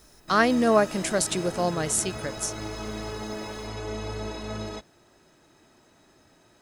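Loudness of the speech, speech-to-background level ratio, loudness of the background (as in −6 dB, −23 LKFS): −24.5 LKFS, 11.0 dB, −35.5 LKFS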